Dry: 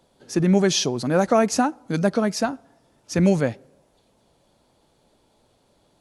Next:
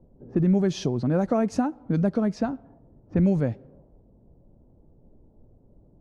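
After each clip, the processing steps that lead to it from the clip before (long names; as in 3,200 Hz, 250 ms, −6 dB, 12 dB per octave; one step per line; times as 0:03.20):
low-pass that shuts in the quiet parts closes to 490 Hz, open at −17.5 dBFS
spectral tilt −3.5 dB per octave
downward compressor 2 to 1, threshold −27 dBFS, peak gain reduction 11.5 dB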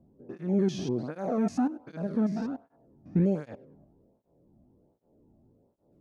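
spectrum averaged block by block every 100 ms
through-zero flanger with one copy inverted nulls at 1.3 Hz, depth 2.3 ms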